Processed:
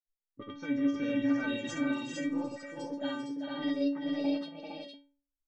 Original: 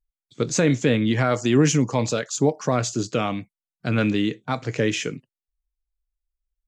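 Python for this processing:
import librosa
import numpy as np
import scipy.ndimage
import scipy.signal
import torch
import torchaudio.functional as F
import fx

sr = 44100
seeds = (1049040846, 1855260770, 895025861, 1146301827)

p1 = fx.speed_glide(x, sr, from_pct=82, to_pct=162)
p2 = scipy.signal.sosfilt(scipy.signal.bessel(2, 4300.0, 'lowpass', norm='mag', fs=sr, output='sos'), p1)
p3 = fx.env_lowpass(p2, sr, base_hz=390.0, full_db=-15.5)
p4 = fx.over_compress(p3, sr, threshold_db=-22.0, ratio=-1.0)
p5 = p3 + (p4 * librosa.db_to_amplitude(-2.0))
p6 = fx.granulator(p5, sr, seeds[0], grain_ms=100.0, per_s=20.0, spray_ms=100.0, spread_st=0)
p7 = fx.stiff_resonator(p6, sr, f0_hz=280.0, decay_s=0.44, stiffness=0.008)
y = p7 + fx.echo_multitap(p7, sr, ms=(392, 460), db=(-6.5, -3.5), dry=0)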